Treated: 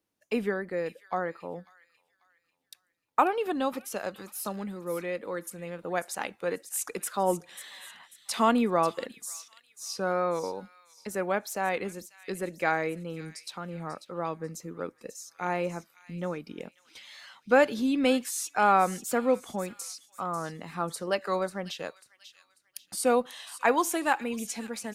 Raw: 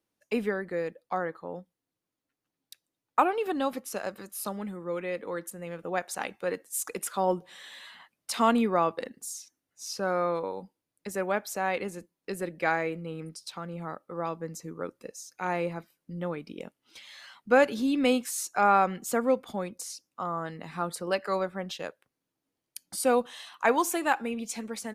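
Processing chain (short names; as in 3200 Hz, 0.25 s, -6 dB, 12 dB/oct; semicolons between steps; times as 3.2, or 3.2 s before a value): wow and flutter 47 cents; thin delay 0.542 s, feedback 36%, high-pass 2900 Hz, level -10.5 dB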